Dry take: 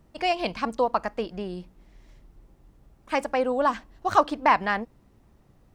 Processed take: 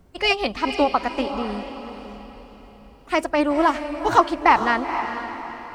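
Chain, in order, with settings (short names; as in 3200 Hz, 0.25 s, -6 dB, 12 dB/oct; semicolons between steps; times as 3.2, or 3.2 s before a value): formant-preserving pitch shift +2.5 st; diffused feedback echo 0.47 s, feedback 42%, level -9 dB; gain +4.5 dB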